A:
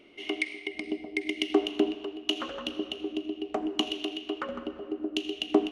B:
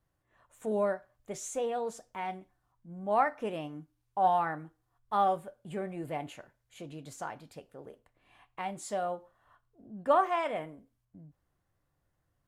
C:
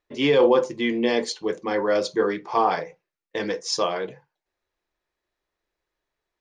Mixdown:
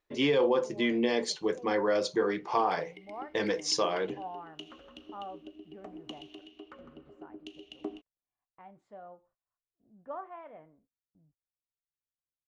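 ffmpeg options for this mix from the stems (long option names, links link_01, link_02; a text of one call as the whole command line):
ffmpeg -i stem1.wav -i stem2.wav -i stem3.wav -filter_complex "[0:a]lowpass=9000,lowshelf=frequency=150:gain=10.5,adelay=2300,volume=-17dB[link_01];[1:a]agate=range=-18dB:threshold=-56dB:ratio=16:detection=peak,lowpass=1600,volume=-15dB[link_02];[2:a]volume=-2dB[link_03];[link_01][link_02][link_03]amix=inputs=3:normalize=0,acompressor=threshold=-25dB:ratio=2.5" out.wav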